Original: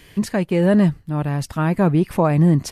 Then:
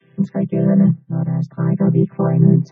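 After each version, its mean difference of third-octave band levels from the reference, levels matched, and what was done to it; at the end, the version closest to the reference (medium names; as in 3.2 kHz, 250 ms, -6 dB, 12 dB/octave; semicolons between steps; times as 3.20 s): 9.0 dB: vocoder on a held chord major triad, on C3; loudest bins only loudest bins 64; trim +3 dB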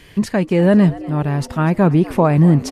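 2.0 dB: treble shelf 8.8 kHz -8 dB; on a send: frequency-shifting echo 245 ms, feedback 53%, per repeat +100 Hz, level -19 dB; on the sum: trim +3 dB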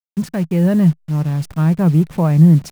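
5.5 dB: send-on-delta sampling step -30.5 dBFS; peaking EQ 160 Hz +11.5 dB 0.58 oct; trim -4 dB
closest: second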